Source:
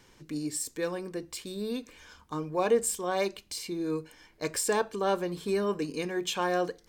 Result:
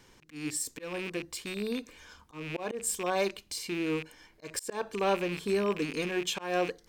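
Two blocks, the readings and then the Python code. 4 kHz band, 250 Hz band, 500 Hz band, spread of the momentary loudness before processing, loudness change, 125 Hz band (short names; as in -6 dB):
0.0 dB, -1.5 dB, -2.5 dB, 11 LU, -1.5 dB, -1.0 dB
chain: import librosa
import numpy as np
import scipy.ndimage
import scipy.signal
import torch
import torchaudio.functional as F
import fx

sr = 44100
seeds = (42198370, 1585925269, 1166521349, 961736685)

y = fx.rattle_buzz(x, sr, strikes_db=-45.0, level_db=-28.0)
y = fx.auto_swell(y, sr, attack_ms=194.0)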